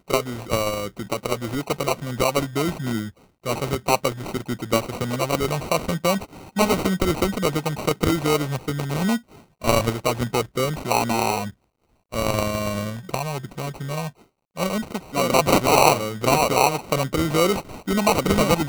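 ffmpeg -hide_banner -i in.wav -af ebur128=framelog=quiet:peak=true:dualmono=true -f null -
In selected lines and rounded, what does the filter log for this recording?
Integrated loudness:
  I:         -19.9 LUFS
  Threshold: -30.2 LUFS
Loudness range:
  LRA:         6.1 LU
  Threshold: -40.3 LUFS
  LRA low:   -22.9 LUFS
  LRA high:  -16.8 LUFS
True peak:
  Peak:       -1.1 dBFS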